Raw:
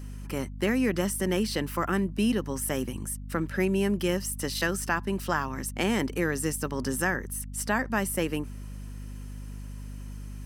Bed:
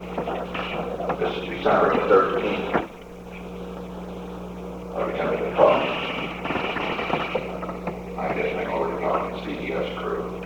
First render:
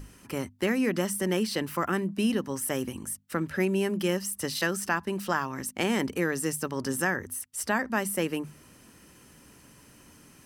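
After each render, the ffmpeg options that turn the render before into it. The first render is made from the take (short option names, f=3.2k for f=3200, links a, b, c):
-af "bandreject=f=50:t=h:w=6,bandreject=f=100:t=h:w=6,bandreject=f=150:t=h:w=6,bandreject=f=200:t=h:w=6,bandreject=f=250:t=h:w=6"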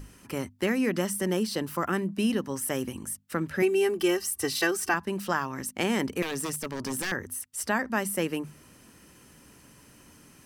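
-filter_complex "[0:a]asettb=1/sr,asplit=3[a][b][c];[a]atrim=end=1.304[d];[b]atrim=start=1.3:end=1.83,asetpts=PTS-STARTPTS,afade=t=in:d=0.004:c=qsin,afade=t=out:st=0.526:d=0.004:c=qsin,equalizer=f=2.2k:w=1.5:g=-5.5[e];[c]atrim=start=1.826[f];[d][e]acrossfade=d=0.004:c1=hsin:c2=qsin[g];[g][f]acrossfade=d=0.004:c1=qsin:c2=hsin,asettb=1/sr,asplit=3[h][i][j];[h]atrim=end=3.624[k];[i]atrim=start=3.62:end=4.94,asetpts=PTS-STARTPTS,afade=t=in:d=0.004:c=qsin,afade=t=out:st=1.316:d=0.004:c=qsin,aecho=1:1:2.6:0.87,atrim=end_sample=58212[l];[j]atrim=start=4.936[m];[k][l]acrossfade=d=0.004:c1=hsin:c2=qsin[n];[n][m]acrossfade=d=0.004:c1=qsin:c2=hsin,asettb=1/sr,asplit=3[o][p][q];[o]atrim=end=6.224[r];[p]atrim=start=6.22:end=7.12,asetpts=PTS-STARTPTS,afade=t=in:d=0.004:c=qsin,afade=t=out:st=0.896:d=0.004:c=qsin,aeval=exprs='0.0562*(abs(mod(val(0)/0.0562+3,4)-2)-1)':c=same[s];[q]atrim=start=7.116[t];[r][s]acrossfade=d=0.004:c1=hsin:c2=qsin[u];[u][t]acrossfade=d=0.004:c1=qsin:c2=hsin"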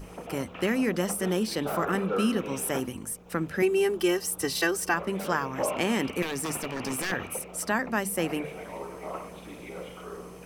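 -filter_complex "[1:a]volume=-13.5dB[a];[0:a][a]amix=inputs=2:normalize=0"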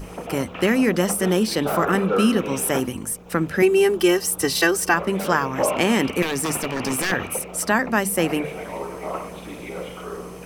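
-af "volume=7.5dB"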